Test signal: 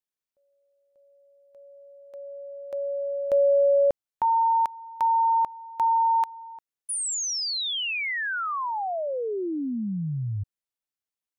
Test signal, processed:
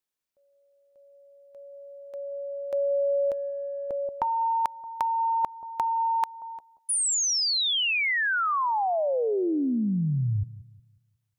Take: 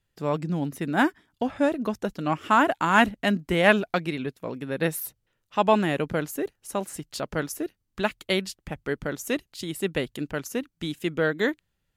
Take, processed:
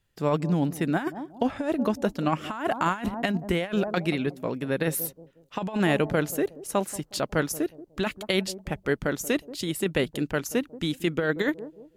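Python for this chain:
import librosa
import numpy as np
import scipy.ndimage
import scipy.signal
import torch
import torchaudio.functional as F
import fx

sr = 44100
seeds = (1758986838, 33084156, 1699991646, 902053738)

p1 = x + fx.echo_bbd(x, sr, ms=181, stages=1024, feedback_pct=35, wet_db=-17.0, dry=0)
p2 = fx.over_compress(p1, sr, threshold_db=-24.0, ratio=-0.5)
y = p2 * 10.0 ** (1.0 / 20.0)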